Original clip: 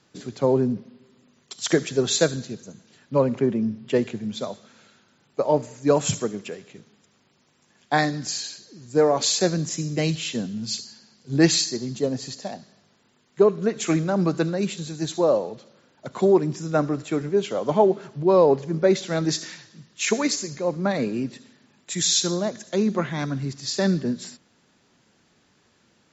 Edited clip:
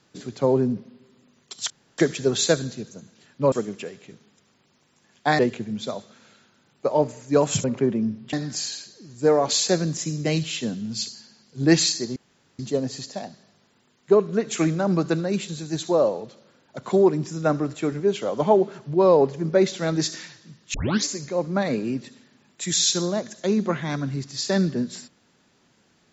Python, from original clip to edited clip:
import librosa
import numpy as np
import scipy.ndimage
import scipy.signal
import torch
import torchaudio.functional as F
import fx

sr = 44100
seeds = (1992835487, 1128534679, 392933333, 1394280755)

y = fx.edit(x, sr, fx.insert_room_tone(at_s=1.7, length_s=0.28),
    fx.swap(start_s=3.24, length_s=0.69, other_s=6.18, other_length_s=1.87),
    fx.insert_room_tone(at_s=11.88, length_s=0.43),
    fx.tape_start(start_s=20.03, length_s=0.3), tone=tone)